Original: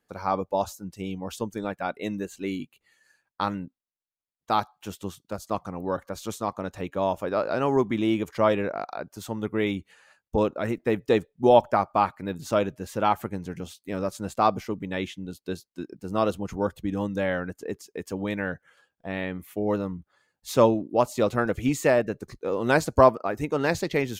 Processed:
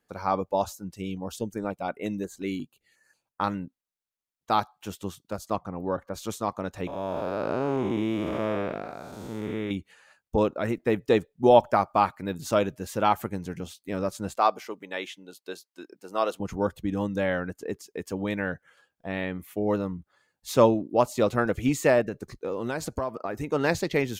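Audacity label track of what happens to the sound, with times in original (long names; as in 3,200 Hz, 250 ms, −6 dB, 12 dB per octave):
0.990000	3.440000	notch on a step sequencer 5.6 Hz 860–4,200 Hz
5.560000	6.140000	high-shelf EQ 2,900 Hz −12 dB
6.870000	9.710000	spectrum smeared in time width 365 ms
11.660000	13.550000	high-shelf EQ 4,200 Hz +4 dB
14.360000	16.400000	high-pass filter 480 Hz
22.080000	23.470000	downward compressor, threshold −26 dBFS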